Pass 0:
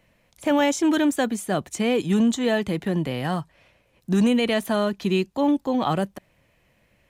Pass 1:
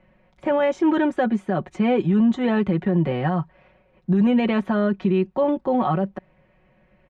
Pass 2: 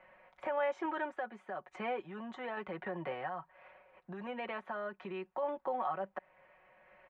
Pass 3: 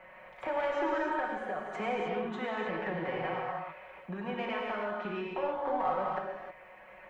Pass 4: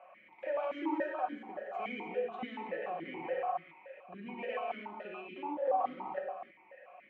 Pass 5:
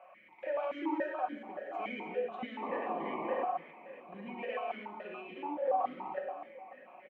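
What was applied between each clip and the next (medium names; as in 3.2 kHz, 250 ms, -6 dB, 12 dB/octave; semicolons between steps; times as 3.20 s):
low-pass 1.7 kHz 12 dB/octave; comb 5.4 ms, depth 72%; peak limiter -16 dBFS, peak gain reduction 8.5 dB; trim +3.5 dB
three-band isolator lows -23 dB, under 570 Hz, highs -14 dB, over 2.5 kHz; compression 2:1, threshold -46 dBFS, peak gain reduction 13.5 dB; random-step tremolo; trim +5.5 dB
single-diode clipper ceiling -28 dBFS; in parallel at +1.5 dB: compression, threshold -48 dBFS, peak gain reduction 16.5 dB; on the sum: gated-style reverb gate 340 ms flat, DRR -2.5 dB
stepped vowel filter 7 Hz; trim +6.5 dB
painted sound noise, 2.62–3.45 s, 200–1200 Hz -39 dBFS; feedback delay 874 ms, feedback 56%, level -20 dB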